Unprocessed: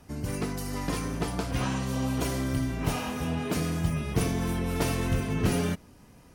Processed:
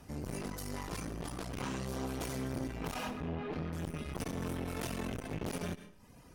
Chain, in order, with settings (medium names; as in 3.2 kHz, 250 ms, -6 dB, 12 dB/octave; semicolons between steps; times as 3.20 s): reverb removal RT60 0.67 s; in parallel at +1.5 dB: peak limiter -24 dBFS, peak gain reduction 10.5 dB; on the sum: one-sided clip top -31 dBFS, bottom -13 dBFS; 3.10–3.73 s: distance through air 330 m; on a send at -11 dB: reverberation RT60 0.65 s, pre-delay 30 ms; on the sum: transformer saturation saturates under 540 Hz; trim -7.5 dB